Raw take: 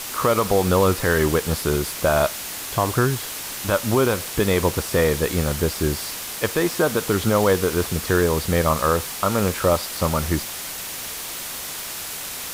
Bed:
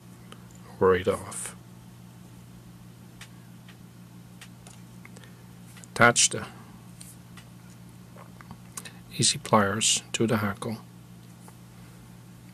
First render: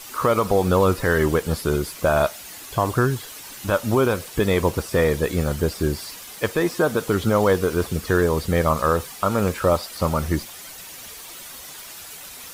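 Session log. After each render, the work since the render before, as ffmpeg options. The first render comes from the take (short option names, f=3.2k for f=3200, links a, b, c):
-af "afftdn=nr=10:nf=-32"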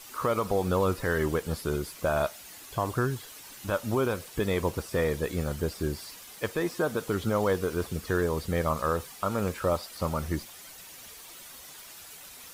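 -af "volume=-8dB"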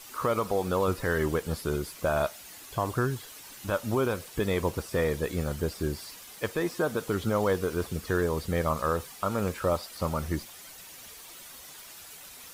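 -filter_complex "[0:a]asettb=1/sr,asplit=3[a][b][c];[a]atrim=end=0.444[d];[b]atrim=start=0.44:end=0.88,asetpts=PTS-STARTPTS,afade=t=in:d=0.004:c=qsin,afade=t=out:st=0.436:d=0.004:c=qsin,lowshelf=f=170:g=-6.5[e];[c]atrim=start=0.876[f];[d][e]acrossfade=d=0.004:c1=hsin:c2=qsin[g];[g][f]acrossfade=d=0.004:c1=qsin:c2=hsin"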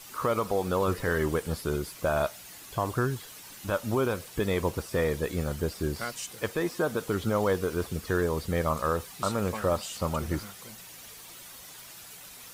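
-filter_complex "[1:a]volume=-17.5dB[a];[0:a][a]amix=inputs=2:normalize=0"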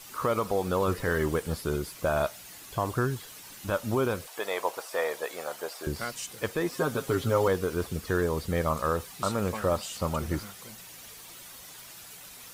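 -filter_complex "[0:a]asettb=1/sr,asplit=3[a][b][c];[a]atrim=end=1.094[d];[b]atrim=start=1.09:end=1.7,asetpts=PTS-STARTPTS,afade=t=in:d=0.004:c=qsin,afade=t=out:st=0.606:d=0.004:c=qsin,acrusher=bits=9:mode=log:mix=0:aa=0.000001[e];[c]atrim=start=1.696[f];[d][e]acrossfade=d=0.004:c1=hsin:c2=qsin[g];[g][f]acrossfade=d=0.004:c1=qsin:c2=hsin,asettb=1/sr,asplit=3[h][i][j];[h]atrim=end=4.274[k];[i]atrim=start=4.27:end=5.87,asetpts=PTS-STARTPTS,afade=t=in:d=0.004:c=qsin,afade=t=out:st=1.596:d=0.004:c=qsin,highpass=f=700:t=q:w=1.9[l];[j]atrim=start=5.866[m];[k][l]acrossfade=d=0.004:c1=hsin:c2=qsin[n];[n][m]acrossfade=d=0.004:c1=qsin:c2=hsin,asettb=1/sr,asplit=3[o][p][q];[o]atrim=end=6.724[r];[p]atrim=start=6.72:end=7.48,asetpts=PTS-STARTPTS,afade=t=in:d=0.004:c=qsin,afade=t=out:st=0.756:d=0.004:c=qsin,aecho=1:1:7.4:0.73,atrim=end_sample=33516[s];[q]atrim=start=7.476[t];[r][s]acrossfade=d=0.004:c1=hsin:c2=qsin[u];[u][t]acrossfade=d=0.004:c1=qsin:c2=hsin"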